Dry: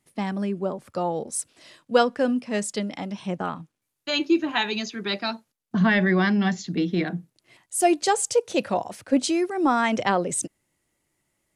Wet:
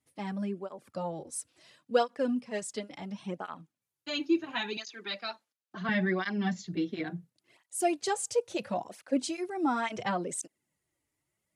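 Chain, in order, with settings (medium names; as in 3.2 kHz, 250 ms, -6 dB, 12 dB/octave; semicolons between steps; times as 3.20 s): 4.77–5.89 s: frequency weighting A; cancelling through-zero flanger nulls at 0.72 Hz, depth 5.9 ms; trim -6 dB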